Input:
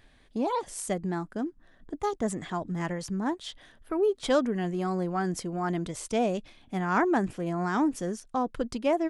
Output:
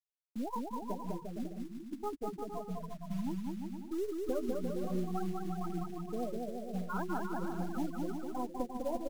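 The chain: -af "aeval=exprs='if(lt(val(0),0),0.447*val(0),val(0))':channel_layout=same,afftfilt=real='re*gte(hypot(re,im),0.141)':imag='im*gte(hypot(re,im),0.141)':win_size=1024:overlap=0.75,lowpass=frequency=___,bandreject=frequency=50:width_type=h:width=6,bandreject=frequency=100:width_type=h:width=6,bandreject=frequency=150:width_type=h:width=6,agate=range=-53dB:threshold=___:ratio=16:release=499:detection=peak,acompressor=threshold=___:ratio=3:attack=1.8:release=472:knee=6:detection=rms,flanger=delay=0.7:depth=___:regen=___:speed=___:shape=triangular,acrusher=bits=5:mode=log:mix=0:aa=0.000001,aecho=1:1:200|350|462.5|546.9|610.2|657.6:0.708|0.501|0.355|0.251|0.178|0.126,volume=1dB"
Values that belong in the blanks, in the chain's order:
2000, -56dB, -31dB, 4.7, -18, 1.7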